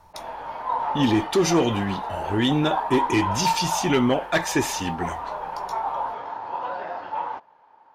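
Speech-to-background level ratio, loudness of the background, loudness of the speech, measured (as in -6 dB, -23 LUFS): 6.0 dB, -29.5 LUFS, -23.5 LUFS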